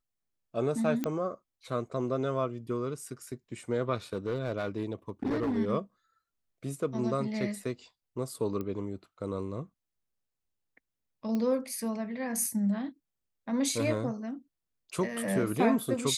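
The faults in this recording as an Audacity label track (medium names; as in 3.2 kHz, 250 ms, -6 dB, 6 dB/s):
1.040000	1.040000	pop -17 dBFS
4.130000	5.580000	clipped -26.5 dBFS
8.610000	8.610000	pop -24 dBFS
11.350000	11.350000	pop -21 dBFS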